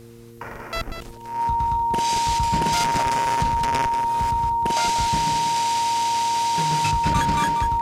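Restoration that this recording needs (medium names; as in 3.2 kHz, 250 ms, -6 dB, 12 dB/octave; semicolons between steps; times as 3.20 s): de-hum 116.4 Hz, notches 4; band-stop 930 Hz, Q 30; expander -28 dBFS, range -21 dB; inverse comb 190 ms -9 dB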